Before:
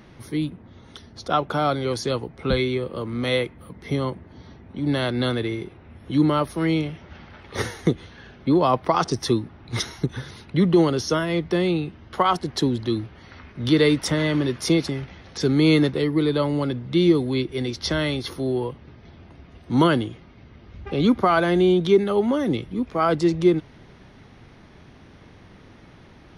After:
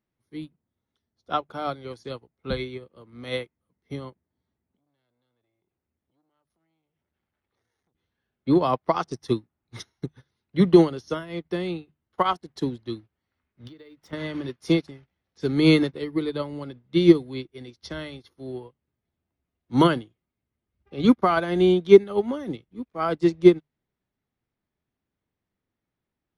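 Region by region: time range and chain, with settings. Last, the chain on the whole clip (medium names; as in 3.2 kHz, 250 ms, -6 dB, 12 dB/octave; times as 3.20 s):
4.76–7.95 s: compression 4:1, threshold -37 dBFS + transformer saturation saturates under 870 Hz
13.67–14.13 s: treble shelf 5.4 kHz -6.5 dB + compression 8:1, threshold -25 dBFS + decimation joined by straight lines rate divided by 2×
whole clip: hum notches 50/100/150 Hz; upward expansion 2.5:1, over -40 dBFS; trim +6 dB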